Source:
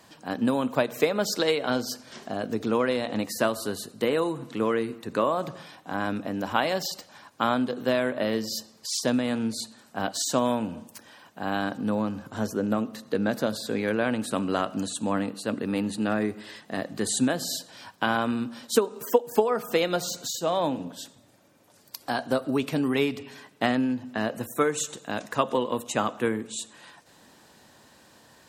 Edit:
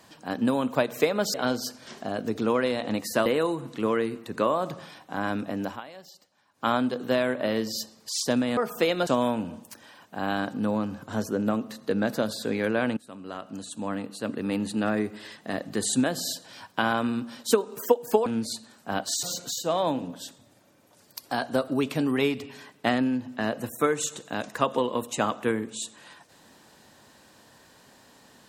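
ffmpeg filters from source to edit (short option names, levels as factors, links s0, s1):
-filter_complex "[0:a]asplit=10[s0][s1][s2][s3][s4][s5][s6][s7][s8][s9];[s0]atrim=end=1.342[s10];[s1]atrim=start=1.588:end=3.512[s11];[s2]atrim=start=4.028:end=6.58,asetpts=PTS-STARTPTS,afade=t=out:st=2.382:d=0.17:silence=0.11885[s12];[s3]atrim=start=6.58:end=7.28,asetpts=PTS-STARTPTS,volume=0.119[s13];[s4]atrim=start=7.28:end=9.342,asetpts=PTS-STARTPTS,afade=t=in:d=0.17:silence=0.11885[s14];[s5]atrim=start=19.498:end=20.002[s15];[s6]atrim=start=10.308:end=14.21,asetpts=PTS-STARTPTS,afade=t=out:st=3.898:d=0.004:c=hsin:silence=0.0749894[s16];[s7]atrim=start=14.21:end=19.502,asetpts=PTS-STARTPTS,afade=t=in:d=1.69:silence=0.0749894[s17];[s8]atrim=start=9.338:end=10.312[s18];[s9]atrim=start=19.998[s19];[s10][s11]acrossfade=d=0.004:c1=hsin:c2=hsin[s20];[s12][s13][s14]concat=n=3:v=0:a=1[s21];[s20][s21]acrossfade=d=0.004:c1=hsin:c2=hsin[s22];[s22][s15]acrossfade=d=0.004:c1=hsin:c2=hsin[s23];[s16][s17]concat=n=2:v=0:a=1[s24];[s23][s24]acrossfade=d=0.004:c1=hsin:c2=hsin[s25];[s25][s18]acrossfade=d=0.004:c1=hsin:c2=hsin[s26];[s26][s19]acrossfade=d=0.004:c1=hsin:c2=hsin"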